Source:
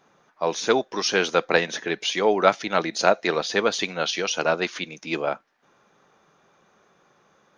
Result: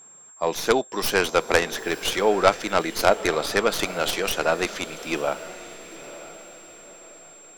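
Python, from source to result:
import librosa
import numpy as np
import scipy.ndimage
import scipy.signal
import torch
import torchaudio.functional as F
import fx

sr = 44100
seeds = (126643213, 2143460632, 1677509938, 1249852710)

y = fx.tracing_dist(x, sr, depth_ms=0.16)
y = fx.echo_diffused(y, sr, ms=940, feedback_pct=41, wet_db=-14.5)
y = y + 10.0 ** (-46.0 / 20.0) * np.sin(2.0 * np.pi * 7500.0 * np.arange(len(y)) / sr)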